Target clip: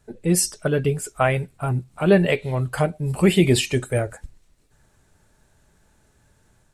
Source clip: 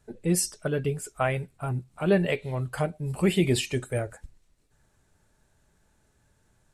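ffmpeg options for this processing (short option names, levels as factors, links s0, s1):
-af "dynaudnorm=f=220:g=3:m=1.41,volume=1.5"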